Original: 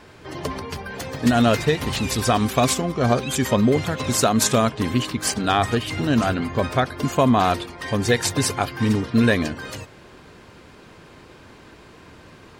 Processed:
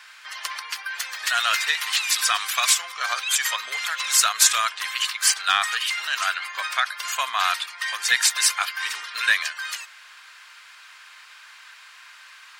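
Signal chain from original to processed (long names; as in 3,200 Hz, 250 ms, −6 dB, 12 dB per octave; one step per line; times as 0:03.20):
high-pass filter 1,300 Hz 24 dB per octave
in parallel at −7 dB: soft clipping −19.5 dBFS, distortion −12 dB
on the sum: level +3 dB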